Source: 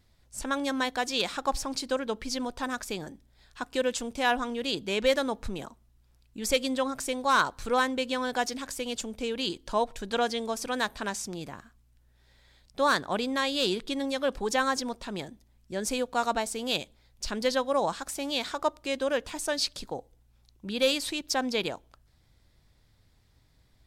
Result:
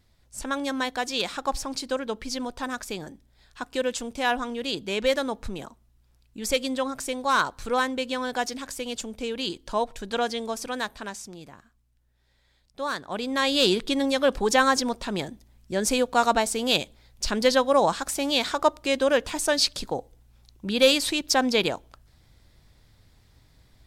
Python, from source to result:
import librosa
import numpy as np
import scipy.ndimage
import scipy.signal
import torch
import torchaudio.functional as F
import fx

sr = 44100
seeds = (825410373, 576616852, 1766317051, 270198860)

y = fx.gain(x, sr, db=fx.line((10.56, 1.0), (11.38, -5.5), (13.0, -5.5), (13.52, 6.5)))